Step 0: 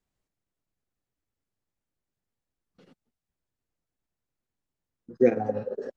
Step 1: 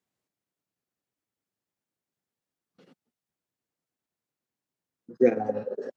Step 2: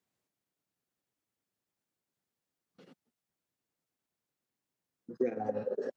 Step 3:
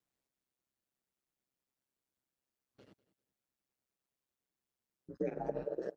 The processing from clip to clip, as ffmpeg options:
ffmpeg -i in.wav -af "highpass=150" out.wav
ffmpeg -i in.wav -af "acompressor=threshold=-28dB:ratio=8" out.wav
ffmpeg -i in.wav -af "aeval=exprs='val(0)*sin(2*PI*66*n/s)':channel_layout=same,aecho=1:1:197|394:0.1|0.025,volume=-1dB" out.wav

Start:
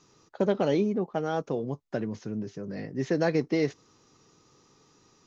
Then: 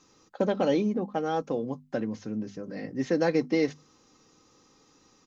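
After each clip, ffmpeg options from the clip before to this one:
ffmpeg -i in.wav -af "bandreject=frequency=50:width_type=h:width=6,bandreject=frequency=100:width_type=h:width=6,bandreject=frequency=150:width_type=h:width=6,bandreject=frequency=200:width_type=h:width=6,bandreject=frequency=250:width_type=h:width=6,aecho=1:1:3.8:0.41" out.wav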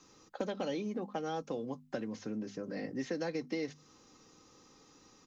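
ffmpeg -i in.wav -filter_complex "[0:a]acrossover=split=220|1300|2700[link_01][link_02][link_03][link_04];[link_01]acompressor=threshold=-49dB:ratio=4[link_05];[link_02]acompressor=threshold=-37dB:ratio=4[link_06];[link_03]acompressor=threshold=-52dB:ratio=4[link_07];[link_04]acompressor=threshold=-51dB:ratio=4[link_08];[link_05][link_06][link_07][link_08]amix=inputs=4:normalize=0" out.wav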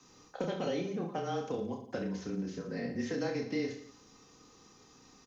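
ffmpeg -i in.wav -filter_complex "[0:a]afreqshift=-24,asplit=2[link_01][link_02];[link_02]aecho=0:1:30|67.5|114.4|173|246.2:0.631|0.398|0.251|0.158|0.1[link_03];[link_01][link_03]amix=inputs=2:normalize=0" out.wav

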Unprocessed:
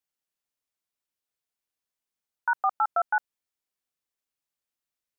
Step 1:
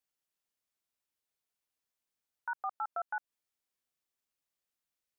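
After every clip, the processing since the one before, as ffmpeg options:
ffmpeg -i in.wav -af "alimiter=level_in=3dB:limit=-24dB:level=0:latency=1:release=147,volume=-3dB,volume=-1dB" out.wav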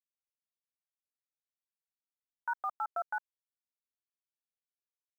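ffmpeg -i in.wav -af "aecho=1:1:3.2:0.37,acrusher=bits=10:mix=0:aa=0.000001,volume=1dB" out.wav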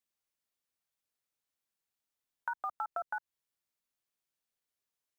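ffmpeg -i in.wav -filter_complex "[0:a]acrossover=split=230[link_01][link_02];[link_02]acompressor=threshold=-40dB:ratio=6[link_03];[link_01][link_03]amix=inputs=2:normalize=0,volume=6dB" out.wav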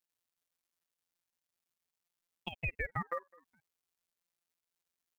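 ffmpeg -i in.wav -af "aecho=1:1:208|416:0.0631|0.0164,afftfilt=real='hypot(re,im)*cos(PI*b)':imag='0':win_size=1024:overlap=0.75,aeval=exprs='val(0)*sin(2*PI*1200*n/s+1200*0.75/0.46*sin(2*PI*0.46*n/s))':channel_layout=same,volume=6dB" out.wav

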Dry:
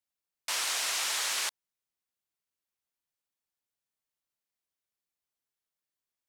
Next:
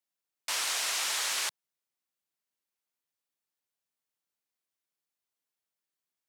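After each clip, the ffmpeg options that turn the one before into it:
ffmpeg -i in.wav -af "highpass=130" out.wav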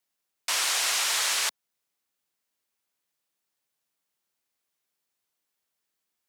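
ffmpeg -i in.wav -filter_complex "[0:a]asplit=2[link_01][link_02];[link_02]alimiter=level_in=2.5dB:limit=-24dB:level=0:latency=1:release=378,volume=-2.5dB,volume=-3dB[link_03];[link_01][link_03]amix=inputs=2:normalize=0,afreqshift=29,volume=2.5dB" out.wav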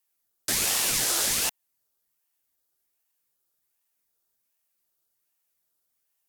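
ffmpeg -i in.wav -af "aeval=exprs='if(lt(val(0),0),0.708*val(0),val(0))':channel_layout=same,equalizer=frequency=1000:width_type=o:width=1:gain=6,equalizer=frequency=2000:width_type=o:width=1:gain=-10,equalizer=frequency=16000:width_type=o:width=1:gain=11,aeval=exprs='val(0)*sin(2*PI*1100*n/s+1100*0.7/1.3*sin(2*PI*1.3*n/s))':channel_layout=same,volume=3dB" out.wav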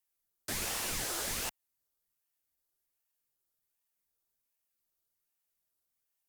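ffmpeg -i in.wav -filter_complex "[0:a]lowshelf=frequency=74:gain=10.5,acrossover=split=140|2100[link_01][link_02][link_03];[link_03]volume=28dB,asoftclip=hard,volume=-28dB[link_04];[link_01][link_02][link_04]amix=inputs=3:normalize=0,volume=-7dB" out.wav

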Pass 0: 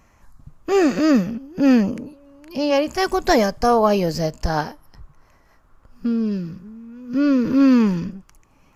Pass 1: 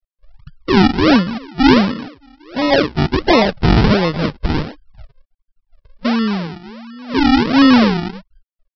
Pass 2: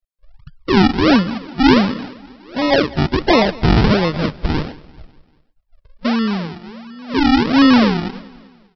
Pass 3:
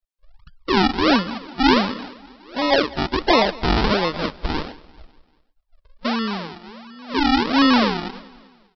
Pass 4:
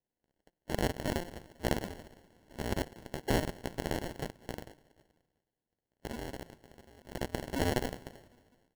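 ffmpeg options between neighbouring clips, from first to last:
ffmpeg -i in.wav -af "afftfilt=real='re*gte(hypot(re,im),0.0282)':imag='im*gte(hypot(re,im),0.0282)':win_size=1024:overlap=0.75,aresample=11025,acrusher=samples=14:mix=1:aa=0.000001:lfo=1:lforange=14:lforate=1.4,aresample=44100,volume=4.5dB" out.wav
ffmpeg -i in.wav -af "aecho=1:1:196|392|588|784:0.0841|0.0421|0.021|0.0105,volume=-1dB" out.wav
ffmpeg -i in.wav -af "equalizer=frequency=125:width_type=o:width=1:gain=-12,equalizer=frequency=1000:width_type=o:width=1:gain=4,equalizer=frequency=4000:width_type=o:width=1:gain=4,volume=-4dB" out.wav
ffmpeg -i in.wav -af "aderivative,acrusher=samples=36:mix=1:aa=0.000001,volume=-1.5dB" out.wav

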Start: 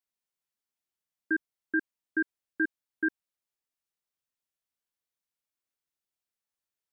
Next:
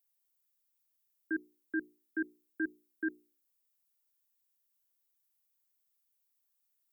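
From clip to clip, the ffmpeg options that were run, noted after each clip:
ffmpeg -i in.wav -filter_complex "[0:a]aemphasis=mode=production:type=50fm,bandreject=frequency=60:width_type=h:width=6,bandreject=frequency=120:width_type=h:width=6,bandreject=frequency=180:width_type=h:width=6,bandreject=frequency=240:width_type=h:width=6,bandreject=frequency=300:width_type=h:width=6,bandreject=frequency=360:width_type=h:width=6,bandreject=frequency=420:width_type=h:width=6,acrossover=split=130|910[link_01][link_02][link_03];[link_03]alimiter=level_in=8dB:limit=-24dB:level=0:latency=1:release=23,volume=-8dB[link_04];[link_01][link_02][link_04]amix=inputs=3:normalize=0,volume=-3.5dB" out.wav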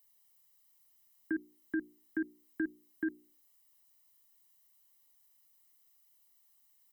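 ffmpeg -i in.wav -af "aecho=1:1:1:0.92,acompressor=threshold=-45dB:ratio=2,volume=8dB" out.wav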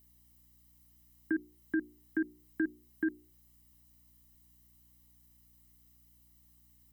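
ffmpeg -i in.wav -af "aeval=exprs='val(0)+0.000355*(sin(2*PI*60*n/s)+sin(2*PI*2*60*n/s)/2+sin(2*PI*3*60*n/s)/3+sin(2*PI*4*60*n/s)/4+sin(2*PI*5*60*n/s)/5)':channel_layout=same,volume=2.5dB" out.wav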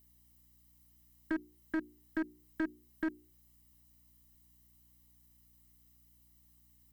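ffmpeg -i in.wav -af "aeval=exprs='clip(val(0),-1,0.0335)':channel_layout=same,volume=-1.5dB" out.wav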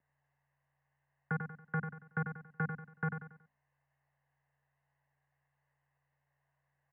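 ffmpeg -i in.wav -filter_complex "[0:a]asplit=2[link_01][link_02];[link_02]aecho=0:1:93|186|279|372:0.422|0.156|0.0577|0.0214[link_03];[link_01][link_03]amix=inputs=2:normalize=0,highpass=frequency=370:width_type=q:width=0.5412,highpass=frequency=370:width_type=q:width=1.307,lowpass=frequency=2200:width_type=q:width=0.5176,lowpass=frequency=2200:width_type=q:width=0.7071,lowpass=frequency=2200:width_type=q:width=1.932,afreqshift=-160,volume=4.5dB" out.wav

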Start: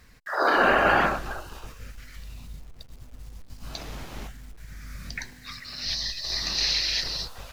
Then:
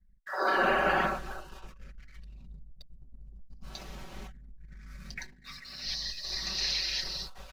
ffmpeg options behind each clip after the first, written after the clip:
ffmpeg -i in.wav -af "anlmdn=0.0251,aecho=1:1:5.3:0.76,volume=-8dB" out.wav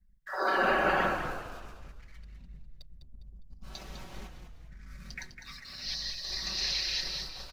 ffmpeg -i in.wav -filter_complex "[0:a]asplit=5[link_01][link_02][link_03][link_04][link_05];[link_02]adelay=203,afreqshift=-42,volume=-8dB[link_06];[link_03]adelay=406,afreqshift=-84,volume=-16.6dB[link_07];[link_04]adelay=609,afreqshift=-126,volume=-25.3dB[link_08];[link_05]adelay=812,afreqshift=-168,volume=-33.9dB[link_09];[link_01][link_06][link_07][link_08][link_09]amix=inputs=5:normalize=0,volume=-1dB" out.wav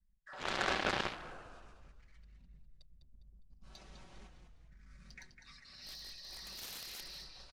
ffmpeg -i in.wav -af "aresample=22050,aresample=44100,aeval=exprs='0.237*(cos(1*acos(clip(val(0)/0.237,-1,1)))-cos(1*PI/2))+0.0531*(cos(7*acos(clip(val(0)/0.237,-1,1)))-cos(7*PI/2))':channel_layout=same,volume=-5.5dB" out.wav

